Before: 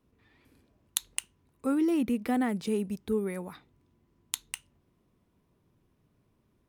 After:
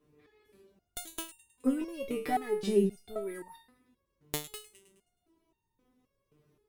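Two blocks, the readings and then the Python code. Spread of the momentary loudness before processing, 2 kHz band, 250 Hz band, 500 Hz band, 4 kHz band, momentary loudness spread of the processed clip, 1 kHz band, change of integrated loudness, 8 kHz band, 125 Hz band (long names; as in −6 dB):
13 LU, −3.5 dB, −5.0 dB, +1.5 dB, −4.0 dB, 17 LU, +2.0 dB, −2.5 dB, −6.5 dB, −0.5 dB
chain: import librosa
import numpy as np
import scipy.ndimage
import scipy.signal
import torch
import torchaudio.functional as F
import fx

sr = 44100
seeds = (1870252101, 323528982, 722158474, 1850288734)

y = fx.echo_thinned(x, sr, ms=105, feedback_pct=49, hz=1000.0, wet_db=-17)
y = fx.cheby_harmonics(y, sr, harmonics=(4, 7), levels_db=(-7, -6), full_scale_db=-4.0)
y = fx.peak_eq(y, sr, hz=400.0, db=9.0, octaves=0.5)
y = fx.resonator_held(y, sr, hz=3.8, low_hz=150.0, high_hz=920.0)
y = y * 10.0 ** (5.0 / 20.0)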